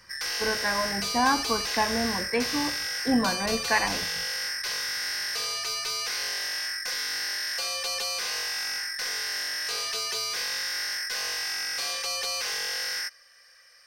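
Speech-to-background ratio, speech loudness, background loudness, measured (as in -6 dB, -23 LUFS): 0.5 dB, -28.0 LUFS, -28.5 LUFS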